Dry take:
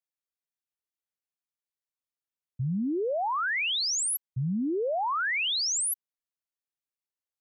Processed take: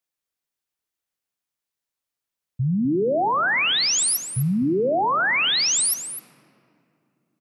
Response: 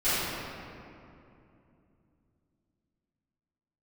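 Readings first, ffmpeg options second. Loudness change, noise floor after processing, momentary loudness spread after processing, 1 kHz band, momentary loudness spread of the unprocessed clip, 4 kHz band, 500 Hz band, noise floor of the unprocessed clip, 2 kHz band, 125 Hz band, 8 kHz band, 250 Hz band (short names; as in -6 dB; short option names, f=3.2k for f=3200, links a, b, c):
+7.5 dB, under -85 dBFS, 8 LU, +7.5 dB, 6 LU, +7.5 dB, +7.5 dB, under -85 dBFS, +7.5 dB, +7.5 dB, +7.5 dB, +7.5 dB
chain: -filter_complex "[0:a]aecho=1:1:254:0.266,asplit=2[a][b];[1:a]atrim=start_sample=2205[c];[b][c]afir=irnorm=-1:irlink=0,volume=-30.5dB[d];[a][d]amix=inputs=2:normalize=0,volume=7dB"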